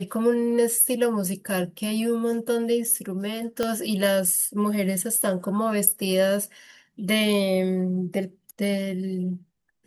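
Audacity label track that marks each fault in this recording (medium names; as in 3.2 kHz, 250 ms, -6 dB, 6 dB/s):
3.630000	3.630000	pop -11 dBFS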